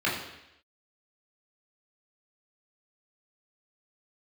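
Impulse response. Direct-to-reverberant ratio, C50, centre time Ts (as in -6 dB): -6.5 dB, 4.5 dB, 47 ms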